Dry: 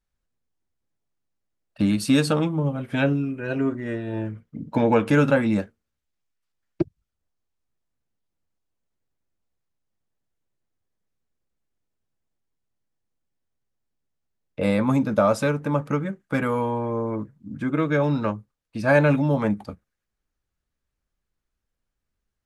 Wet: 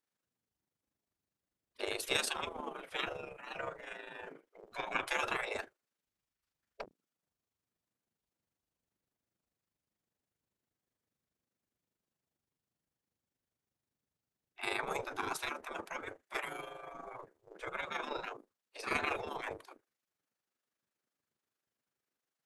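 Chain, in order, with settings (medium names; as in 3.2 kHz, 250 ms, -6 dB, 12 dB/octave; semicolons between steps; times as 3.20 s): octave divider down 2 oct, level +2 dB; spectral gate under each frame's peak -20 dB weak; AM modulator 25 Hz, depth 40%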